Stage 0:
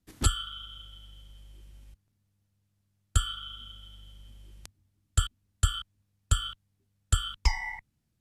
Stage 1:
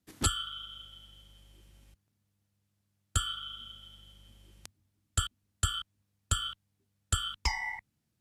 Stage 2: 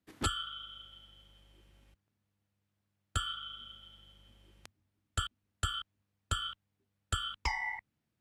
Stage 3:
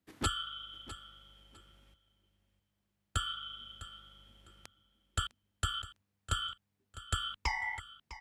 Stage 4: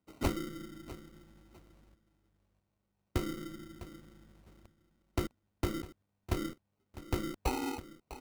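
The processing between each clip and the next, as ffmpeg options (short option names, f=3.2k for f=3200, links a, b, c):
-af "highpass=f=130:p=1"
-af "bass=f=250:g=-5,treble=f=4k:g=-10"
-af "aecho=1:1:654|1308:0.178|0.0409"
-af "acrusher=samples=26:mix=1:aa=0.000001,volume=1dB"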